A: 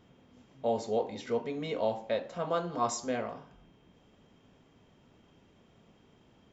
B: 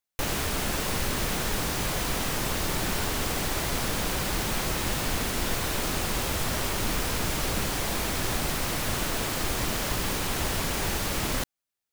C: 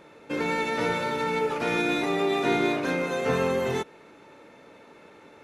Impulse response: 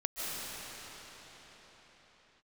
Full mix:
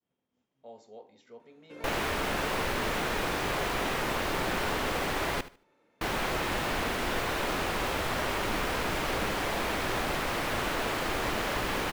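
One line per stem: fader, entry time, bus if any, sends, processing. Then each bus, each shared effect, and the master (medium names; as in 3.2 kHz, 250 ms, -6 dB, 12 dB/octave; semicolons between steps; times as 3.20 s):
-17.5 dB, 0.00 s, no send, no echo send, expander -56 dBFS; bass shelf 150 Hz -10 dB
+2.0 dB, 1.65 s, muted 5.41–6.01 s, no send, echo send -15.5 dB, tone controls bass -9 dB, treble -13 dB
-18.5 dB, 1.40 s, no send, no echo send, none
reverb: none
echo: feedback delay 75 ms, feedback 23%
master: none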